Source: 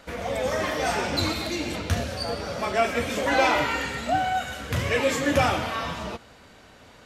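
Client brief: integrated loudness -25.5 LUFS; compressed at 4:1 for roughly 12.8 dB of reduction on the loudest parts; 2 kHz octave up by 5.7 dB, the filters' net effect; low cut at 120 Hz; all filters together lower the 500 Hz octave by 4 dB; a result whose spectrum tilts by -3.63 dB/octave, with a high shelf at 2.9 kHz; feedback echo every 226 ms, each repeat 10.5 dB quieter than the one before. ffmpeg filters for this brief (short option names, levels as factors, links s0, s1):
-af "highpass=120,equalizer=f=500:t=o:g=-5.5,equalizer=f=2000:t=o:g=4.5,highshelf=f=2900:g=7.5,acompressor=threshold=0.0282:ratio=4,aecho=1:1:226|452|678:0.299|0.0896|0.0269,volume=2"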